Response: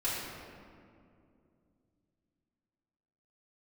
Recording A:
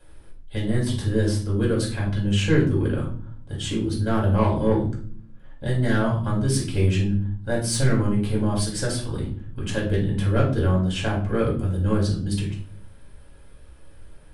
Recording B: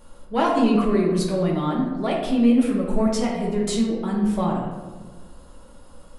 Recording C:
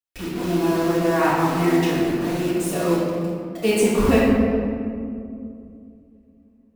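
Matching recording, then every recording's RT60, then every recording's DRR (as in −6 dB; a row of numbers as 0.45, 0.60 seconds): C; 0.50, 1.4, 2.5 seconds; −4.0, −4.5, −10.5 decibels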